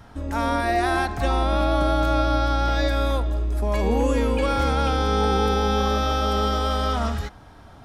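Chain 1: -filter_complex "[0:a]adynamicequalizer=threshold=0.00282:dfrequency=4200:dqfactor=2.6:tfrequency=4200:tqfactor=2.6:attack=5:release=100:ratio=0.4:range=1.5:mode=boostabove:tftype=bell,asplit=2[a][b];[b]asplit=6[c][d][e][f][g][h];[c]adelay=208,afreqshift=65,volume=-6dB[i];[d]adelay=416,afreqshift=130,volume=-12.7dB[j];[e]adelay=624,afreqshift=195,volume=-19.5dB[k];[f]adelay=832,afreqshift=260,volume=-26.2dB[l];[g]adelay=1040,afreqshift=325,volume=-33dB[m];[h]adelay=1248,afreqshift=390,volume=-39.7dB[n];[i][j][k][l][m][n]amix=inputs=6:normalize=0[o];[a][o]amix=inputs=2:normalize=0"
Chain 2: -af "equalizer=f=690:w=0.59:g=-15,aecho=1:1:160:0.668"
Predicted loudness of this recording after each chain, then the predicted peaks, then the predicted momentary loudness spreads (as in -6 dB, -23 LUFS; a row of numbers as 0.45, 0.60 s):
-21.0, -25.5 LUFS; -6.5, -12.5 dBFS; 4, 7 LU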